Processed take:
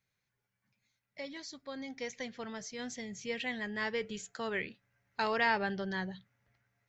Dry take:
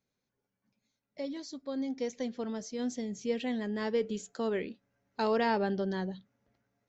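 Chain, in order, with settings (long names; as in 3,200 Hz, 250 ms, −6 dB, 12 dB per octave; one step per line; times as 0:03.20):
octave-band graphic EQ 125/250/500/2,000 Hz +6/−10/−5/+8 dB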